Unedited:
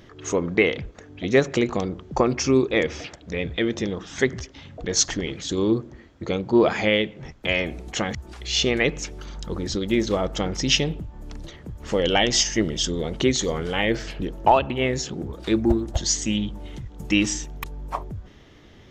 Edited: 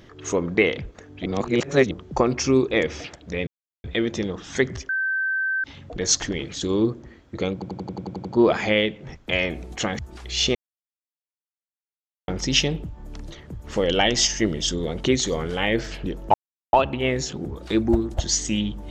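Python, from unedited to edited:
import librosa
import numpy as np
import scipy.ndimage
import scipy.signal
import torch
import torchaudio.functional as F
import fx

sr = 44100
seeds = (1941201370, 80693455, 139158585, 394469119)

y = fx.edit(x, sr, fx.reverse_span(start_s=1.26, length_s=0.65),
    fx.insert_silence(at_s=3.47, length_s=0.37),
    fx.insert_tone(at_s=4.52, length_s=0.75, hz=1550.0, db=-21.0),
    fx.stutter(start_s=6.41, slice_s=0.09, count=9),
    fx.silence(start_s=8.71, length_s=1.73),
    fx.insert_silence(at_s=14.5, length_s=0.39), tone=tone)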